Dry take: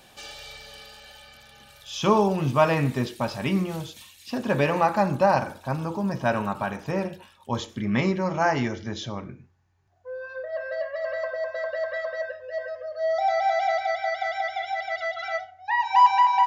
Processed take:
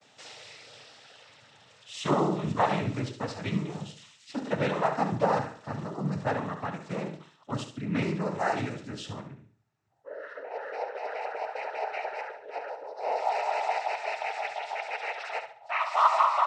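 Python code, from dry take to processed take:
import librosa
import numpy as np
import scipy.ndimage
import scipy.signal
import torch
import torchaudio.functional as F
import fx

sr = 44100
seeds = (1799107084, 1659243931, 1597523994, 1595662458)

y = fx.vibrato(x, sr, rate_hz=0.45, depth_cents=41.0)
y = fx.noise_vocoder(y, sr, seeds[0], bands=12)
y = fx.room_flutter(y, sr, wall_m=11.9, rt60_s=0.42)
y = y * 10.0 ** (-5.5 / 20.0)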